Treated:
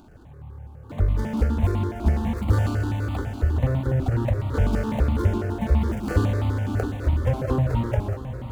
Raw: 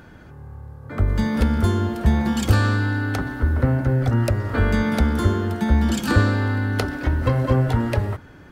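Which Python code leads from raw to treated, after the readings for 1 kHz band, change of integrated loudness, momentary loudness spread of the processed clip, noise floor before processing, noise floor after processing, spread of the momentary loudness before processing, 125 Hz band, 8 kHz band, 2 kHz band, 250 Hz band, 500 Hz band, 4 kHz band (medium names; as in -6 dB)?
-5.5 dB, -3.5 dB, 5 LU, -44 dBFS, -43 dBFS, 6 LU, -2.5 dB, no reading, -10.5 dB, -5.5 dB, -3.0 dB, -10.5 dB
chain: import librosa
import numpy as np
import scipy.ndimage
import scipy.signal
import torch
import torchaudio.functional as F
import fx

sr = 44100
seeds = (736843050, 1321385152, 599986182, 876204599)

y = scipy.signal.medfilt(x, 25)
y = fx.echo_diffused(y, sr, ms=619, feedback_pct=56, wet_db=-11)
y = fx.phaser_held(y, sr, hz=12.0, low_hz=500.0, high_hz=1600.0)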